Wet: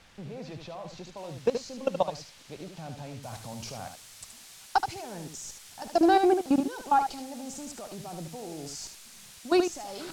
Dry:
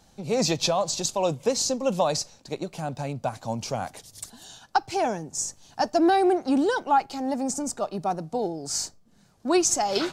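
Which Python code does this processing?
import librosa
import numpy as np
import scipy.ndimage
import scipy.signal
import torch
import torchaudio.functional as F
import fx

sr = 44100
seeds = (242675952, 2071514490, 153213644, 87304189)

y = fx.low_shelf(x, sr, hz=100.0, db=7.0)
y = fx.level_steps(y, sr, step_db=20)
y = fx.dmg_noise_colour(y, sr, seeds[0], colour='blue', level_db=-43.0)
y = fx.lowpass(y, sr, hz=fx.steps((0.0, 2700.0), (1.17, 4600.0), (3.23, 8000.0)), slope=12)
y = y + 10.0 ** (-7.5 / 20.0) * np.pad(y, (int(75 * sr / 1000.0), 0))[:len(y)]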